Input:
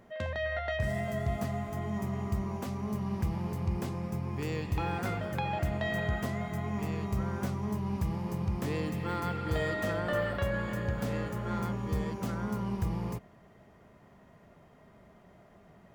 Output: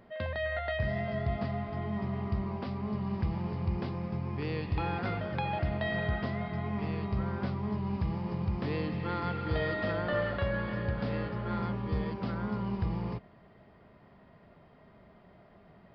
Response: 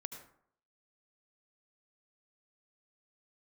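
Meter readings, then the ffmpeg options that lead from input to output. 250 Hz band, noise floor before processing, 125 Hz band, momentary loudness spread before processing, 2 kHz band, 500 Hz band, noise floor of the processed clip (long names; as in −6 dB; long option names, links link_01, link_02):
0.0 dB, −58 dBFS, 0.0 dB, 4 LU, 0.0 dB, 0.0 dB, −58 dBFS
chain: -af "aresample=11025,aresample=44100"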